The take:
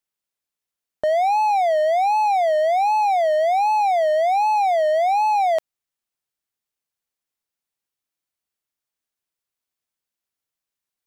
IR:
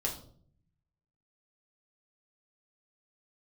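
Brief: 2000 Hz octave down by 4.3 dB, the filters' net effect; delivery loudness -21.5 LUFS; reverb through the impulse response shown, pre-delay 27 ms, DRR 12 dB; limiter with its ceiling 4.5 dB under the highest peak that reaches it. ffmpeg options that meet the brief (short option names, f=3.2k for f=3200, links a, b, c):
-filter_complex "[0:a]equalizer=f=2k:t=o:g=-5,alimiter=limit=-18.5dB:level=0:latency=1,asplit=2[a][b];[1:a]atrim=start_sample=2205,adelay=27[c];[b][c]afir=irnorm=-1:irlink=0,volume=-15.5dB[d];[a][d]amix=inputs=2:normalize=0,volume=1.5dB"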